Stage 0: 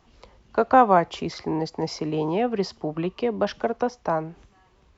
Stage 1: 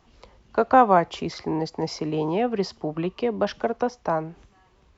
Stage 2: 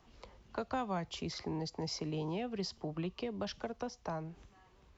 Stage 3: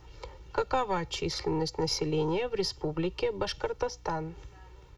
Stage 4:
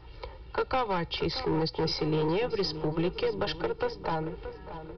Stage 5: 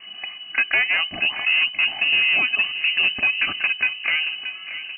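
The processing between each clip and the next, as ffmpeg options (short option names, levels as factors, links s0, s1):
-af anull
-filter_complex "[0:a]acrossover=split=160|3000[s0][s1][s2];[s1]acompressor=threshold=0.0141:ratio=3[s3];[s0][s3][s2]amix=inputs=3:normalize=0,volume=0.596"
-af "aeval=exprs='val(0)+0.000794*(sin(2*PI*60*n/s)+sin(2*PI*2*60*n/s)/2+sin(2*PI*3*60*n/s)/3+sin(2*PI*4*60*n/s)/4+sin(2*PI*5*60*n/s)/5)':c=same,aeval=exprs='0.0596*(cos(1*acos(clip(val(0)/0.0596,-1,1)))-cos(1*PI/2))+0.00422*(cos(4*acos(clip(val(0)/0.0596,-1,1)))-cos(4*PI/2))':c=same,aecho=1:1:2.2:0.95,volume=2"
-filter_complex "[0:a]aresample=11025,asoftclip=type=hard:threshold=0.0531,aresample=44100,asplit=2[s0][s1];[s1]adelay=627,lowpass=f=2400:p=1,volume=0.266,asplit=2[s2][s3];[s3]adelay=627,lowpass=f=2400:p=1,volume=0.54,asplit=2[s4][s5];[s5]adelay=627,lowpass=f=2400:p=1,volume=0.54,asplit=2[s6][s7];[s7]adelay=627,lowpass=f=2400:p=1,volume=0.54,asplit=2[s8][s9];[s9]adelay=627,lowpass=f=2400:p=1,volume=0.54,asplit=2[s10][s11];[s11]adelay=627,lowpass=f=2400:p=1,volume=0.54[s12];[s0][s2][s4][s6][s8][s10][s12]amix=inputs=7:normalize=0,volume=1.33"
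-af "lowpass=f=2600:t=q:w=0.5098,lowpass=f=2600:t=q:w=0.6013,lowpass=f=2600:t=q:w=0.9,lowpass=f=2600:t=q:w=2.563,afreqshift=-3000,volume=2.66"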